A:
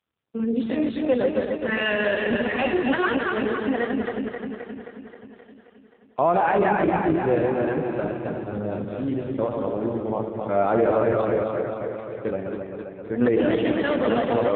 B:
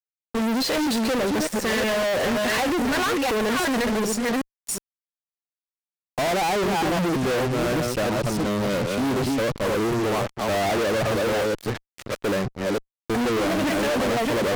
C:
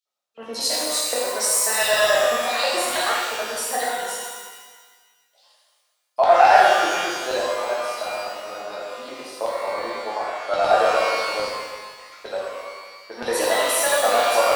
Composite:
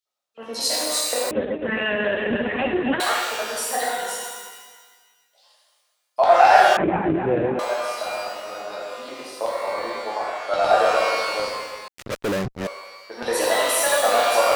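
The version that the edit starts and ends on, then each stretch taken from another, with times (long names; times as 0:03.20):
C
0:01.31–0:03.00: punch in from A
0:06.77–0:07.59: punch in from A
0:11.88–0:12.67: punch in from B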